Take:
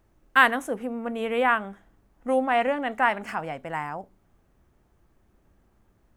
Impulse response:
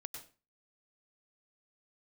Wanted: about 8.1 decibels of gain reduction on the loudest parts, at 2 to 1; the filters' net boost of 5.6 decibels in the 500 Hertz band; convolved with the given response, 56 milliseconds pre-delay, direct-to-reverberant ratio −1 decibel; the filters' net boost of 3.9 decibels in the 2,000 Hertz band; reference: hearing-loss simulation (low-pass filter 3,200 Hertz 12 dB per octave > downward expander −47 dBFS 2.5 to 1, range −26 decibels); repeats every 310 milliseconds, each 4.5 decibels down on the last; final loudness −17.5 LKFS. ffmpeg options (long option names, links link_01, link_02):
-filter_complex "[0:a]equalizer=frequency=500:width_type=o:gain=6,equalizer=frequency=2000:width_type=o:gain=5,acompressor=threshold=-23dB:ratio=2,aecho=1:1:310|620|930|1240|1550|1860|2170|2480|2790:0.596|0.357|0.214|0.129|0.0772|0.0463|0.0278|0.0167|0.01,asplit=2[link_01][link_02];[1:a]atrim=start_sample=2205,adelay=56[link_03];[link_02][link_03]afir=irnorm=-1:irlink=0,volume=4.5dB[link_04];[link_01][link_04]amix=inputs=2:normalize=0,lowpass=3200,agate=range=-26dB:threshold=-47dB:ratio=2.5,volume=4dB"